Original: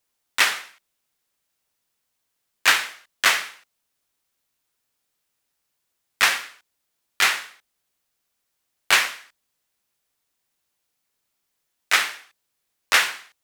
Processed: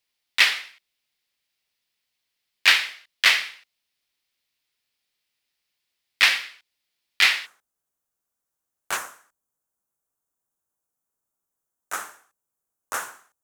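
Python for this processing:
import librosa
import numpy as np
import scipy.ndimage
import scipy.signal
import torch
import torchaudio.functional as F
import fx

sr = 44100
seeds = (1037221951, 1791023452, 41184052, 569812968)

y = fx.band_shelf(x, sr, hz=3100.0, db=fx.steps((0.0, 9.0), (7.45, -9.0), (8.96, -16.0)), octaves=1.7)
y = F.gain(torch.from_numpy(y), -6.0).numpy()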